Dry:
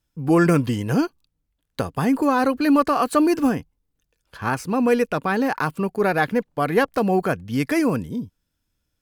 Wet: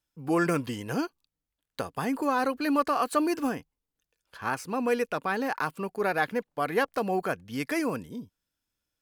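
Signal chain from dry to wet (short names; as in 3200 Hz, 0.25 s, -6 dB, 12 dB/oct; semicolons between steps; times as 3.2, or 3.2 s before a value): low shelf 250 Hz -11 dB; gain -5 dB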